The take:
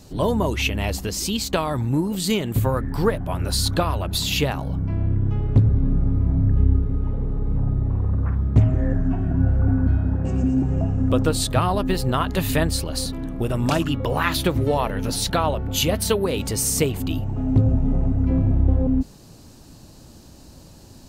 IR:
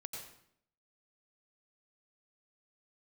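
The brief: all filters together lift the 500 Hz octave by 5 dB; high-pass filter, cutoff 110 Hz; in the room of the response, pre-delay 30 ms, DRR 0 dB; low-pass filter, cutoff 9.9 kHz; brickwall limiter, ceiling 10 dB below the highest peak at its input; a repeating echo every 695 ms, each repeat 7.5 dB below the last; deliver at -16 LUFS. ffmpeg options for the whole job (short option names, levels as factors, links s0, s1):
-filter_complex "[0:a]highpass=110,lowpass=9900,equalizer=f=500:t=o:g=6,alimiter=limit=0.2:level=0:latency=1,aecho=1:1:695|1390|2085|2780|3475:0.422|0.177|0.0744|0.0312|0.0131,asplit=2[s0][s1];[1:a]atrim=start_sample=2205,adelay=30[s2];[s1][s2]afir=irnorm=-1:irlink=0,volume=1.33[s3];[s0][s3]amix=inputs=2:normalize=0,volume=1.58"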